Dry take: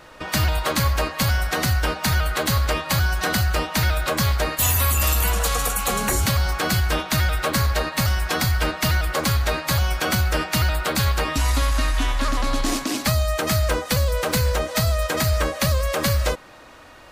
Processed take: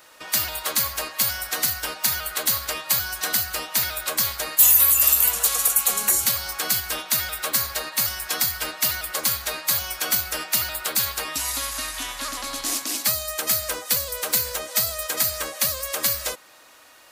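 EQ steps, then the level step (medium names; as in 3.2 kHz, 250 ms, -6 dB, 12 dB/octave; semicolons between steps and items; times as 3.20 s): RIAA curve recording; -7.0 dB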